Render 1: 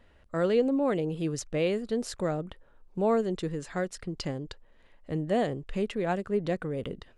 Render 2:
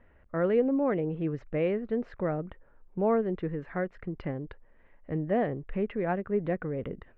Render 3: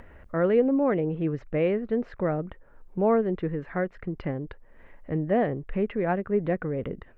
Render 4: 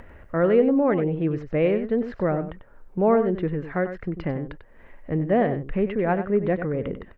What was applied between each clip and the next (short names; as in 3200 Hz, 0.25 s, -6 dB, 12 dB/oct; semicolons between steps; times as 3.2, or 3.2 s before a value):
Chebyshev low-pass 2100 Hz, order 3
upward compressor, threshold -43 dBFS; gain +3.5 dB
echo 95 ms -10.5 dB; gain +3 dB